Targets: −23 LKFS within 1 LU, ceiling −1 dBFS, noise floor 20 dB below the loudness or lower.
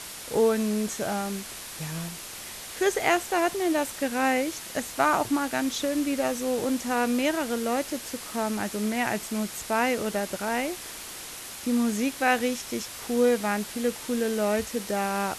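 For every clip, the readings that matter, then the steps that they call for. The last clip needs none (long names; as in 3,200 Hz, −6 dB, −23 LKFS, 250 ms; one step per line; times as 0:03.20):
background noise floor −40 dBFS; target noise floor −48 dBFS; integrated loudness −27.5 LKFS; sample peak −9.5 dBFS; target loudness −23.0 LKFS
→ broadband denoise 8 dB, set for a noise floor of −40 dBFS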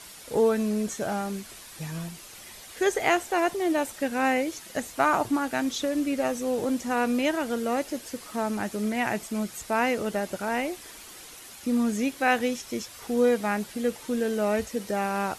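background noise floor −46 dBFS; target noise floor −48 dBFS
→ broadband denoise 6 dB, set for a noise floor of −46 dBFS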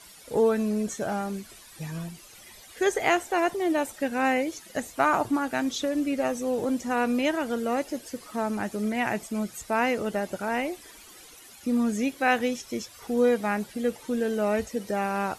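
background noise floor −50 dBFS; integrated loudness −27.5 LKFS; sample peak −10.0 dBFS; target loudness −23.0 LKFS
→ level +4.5 dB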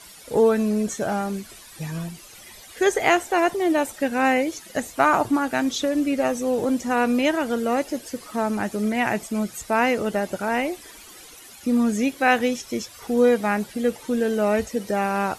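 integrated loudness −23.0 LKFS; sample peak −5.5 dBFS; background noise floor −45 dBFS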